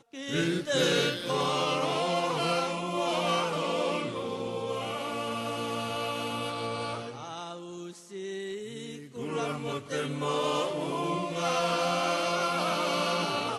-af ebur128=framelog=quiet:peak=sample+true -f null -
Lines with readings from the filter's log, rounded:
Integrated loudness:
  I:         -29.9 LUFS
  Threshold: -40.2 LUFS
Loudness range:
  LRA:         8.5 LU
  Threshold: -51.0 LUFS
  LRA low:   -36.4 LUFS
  LRA high:  -27.9 LUFS
Sample peak:
  Peak:      -14.1 dBFS
True peak:
  Peak:      -13.9 dBFS